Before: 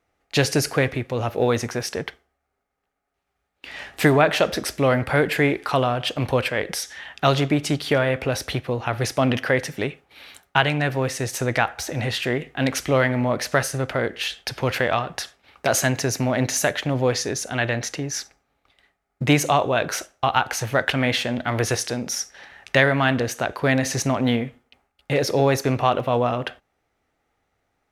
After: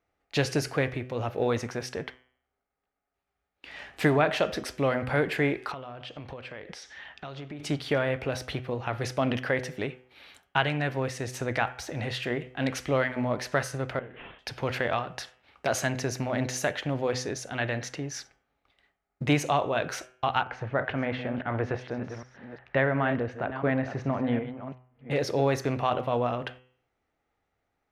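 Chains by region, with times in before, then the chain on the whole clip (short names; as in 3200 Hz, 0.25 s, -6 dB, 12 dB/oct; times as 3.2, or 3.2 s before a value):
5.72–7.6 LPF 6000 Hz + compressor 5:1, threshold -31 dBFS
13.99–14.39 CVSD 16 kbps + compressor 10:1, threshold -33 dBFS
20.43–25.11 reverse delay 0.36 s, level -10.5 dB + LPF 1800 Hz
whole clip: high shelf 7500 Hz -11 dB; de-hum 126.6 Hz, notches 26; gain -6 dB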